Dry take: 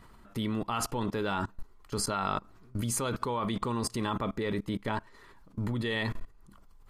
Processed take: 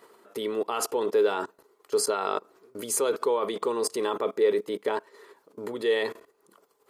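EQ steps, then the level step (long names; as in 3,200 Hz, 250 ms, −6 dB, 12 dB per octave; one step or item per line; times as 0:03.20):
high-pass with resonance 430 Hz, resonance Q 4.9
high-shelf EQ 6,300 Hz +7 dB
0.0 dB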